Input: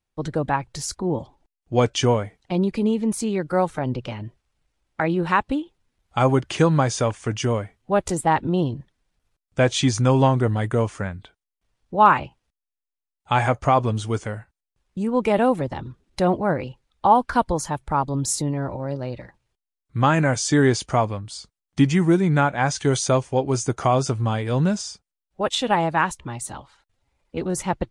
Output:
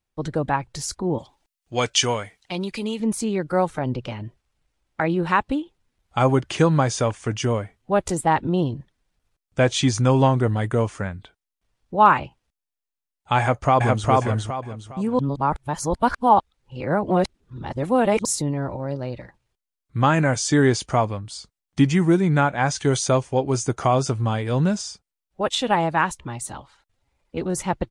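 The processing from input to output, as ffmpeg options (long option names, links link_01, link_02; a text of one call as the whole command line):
ffmpeg -i in.wav -filter_complex "[0:a]asettb=1/sr,asplit=3[link_01][link_02][link_03];[link_01]atrim=end=1.184[link_04];[link_02]atrim=start=1.18:end=3,asetpts=PTS-STARTPTS,afade=type=in:duration=0.004:curve=qsin,afade=type=out:start_time=1.816:duration=0.004:curve=qsin,tiltshelf=frequency=1100:gain=-8[link_05];[link_03]atrim=start=2.996[link_06];[link_04][link_05]acrossfade=duration=0.004:curve1=hsin:curve2=qsin[link_07];[link_07][link_06]acrossfade=duration=0.004:curve1=qsin:curve2=hsin,asplit=2[link_08][link_09];[link_09]afade=type=in:start_time=13.39:duration=0.01,afade=type=out:start_time=14.09:duration=0.01,aecho=0:1:410|820|1230|1640:0.891251|0.267375|0.0802126|0.0240638[link_10];[link_08][link_10]amix=inputs=2:normalize=0,asplit=3[link_11][link_12][link_13];[link_11]atrim=end=15.192[link_14];[link_12]atrim=start=15.188:end=18.252,asetpts=PTS-STARTPTS,areverse[link_15];[link_13]atrim=start=18.248[link_16];[link_14][link_15]acrossfade=duration=0.004:curve1=hsin:curve2=hsin[link_17];[link_17][link_16]acrossfade=duration=0.004:curve1=hsin:curve2=hsin" out.wav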